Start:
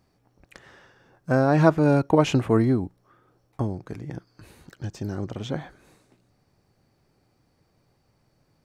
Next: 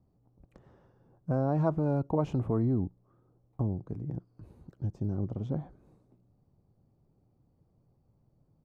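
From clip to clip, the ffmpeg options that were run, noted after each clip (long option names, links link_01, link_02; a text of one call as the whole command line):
ffmpeg -i in.wav -filter_complex "[0:a]firequalizer=gain_entry='entry(150,0);entry(320,-5);entry(1100,-12);entry(1700,-24)':delay=0.05:min_phase=1,acrossover=split=570|1400[link_01][link_02][link_03];[link_01]alimiter=limit=-22.5dB:level=0:latency=1[link_04];[link_04][link_02][link_03]amix=inputs=3:normalize=0" out.wav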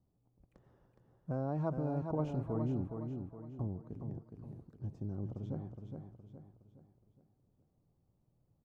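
ffmpeg -i in.wav -af "aecho=1:1:416|832|1248|1664|2080:0.501|0.21|0.0884|0.0371|0.0156,volume=-8dB" out.wav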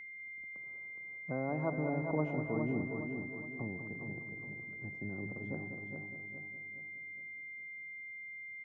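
ffmpeg -i in.wav -filter_complex "[0:a]acrossover=split=160 2500:gain=0.224 1 0.178[link_01][link_02][link_03];[link_01][link_02][link_03]amix=inputs=3:normalize=0,aeval=exprs='val(0)+0.00447*sin(2*PI*2100*n/s)':channel_layout=same,asplit=2[link_04][link_05];[link_05]adelay=198,lowpass=frequency=1500:poles=1,volume=-8dB,asplit=2[link_06][link_07];[link_07]adelay=198,lowpass=frequency=1500:poles=1,volume=0.5,asplit=2[link_08][link_09];[link_09]adelay=198,lowpass=frequency=1500:poles=1,volume=0.5,asplit=2[link_10][link_11];[link_11]adelay=198,lowpass=frequency=1500:poles=1,volume=0.5,asplit=2[link_12][link_13];[link_13]adelay=198,lowpass=frequency=1500:poles=1,volume=0.5,asplit=2[link_14][link_15];[link_15]adelay=198,lowpass=frequency=1500:poles=1,volume=0.5[link_16];[link_04][link_06][link_08][link_10][link_12][link_14][link_16]amix=inputs=7:normalize=0,volume=1.5dB" out.wav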